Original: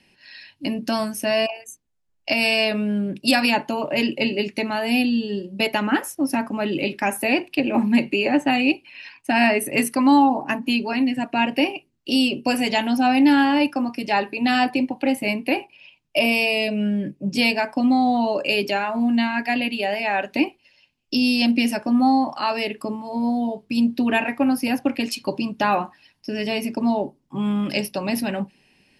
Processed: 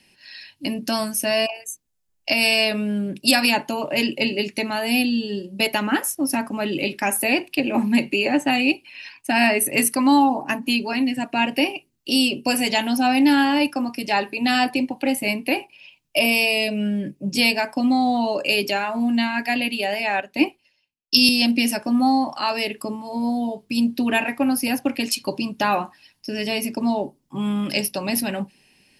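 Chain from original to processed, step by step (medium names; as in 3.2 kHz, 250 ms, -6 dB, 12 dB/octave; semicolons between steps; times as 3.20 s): treble shelf 4.9 kHz +11 dB; 20.20–21.29 s: three bands expanded up and down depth 100%; trim -1 dB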